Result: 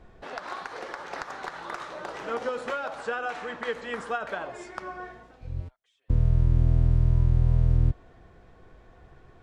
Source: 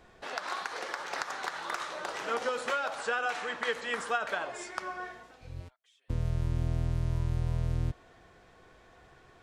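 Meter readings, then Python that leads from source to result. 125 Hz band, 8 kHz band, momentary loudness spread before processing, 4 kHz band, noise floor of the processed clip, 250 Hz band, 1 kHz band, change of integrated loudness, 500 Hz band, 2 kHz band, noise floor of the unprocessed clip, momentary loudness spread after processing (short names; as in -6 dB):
+8.5 dB, -7.0 dB, 9 LU, -4.5 dB, -55 dBFS, +6.0 dB, 0.0 dB, +5.5 dB, +2.5 dB, -2.0 dB, -59 dBFS, 16 LU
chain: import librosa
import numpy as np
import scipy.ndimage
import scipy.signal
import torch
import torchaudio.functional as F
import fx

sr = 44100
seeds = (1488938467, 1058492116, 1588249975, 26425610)

y = fx.tilt_eq(x, sr, slope=-2.5)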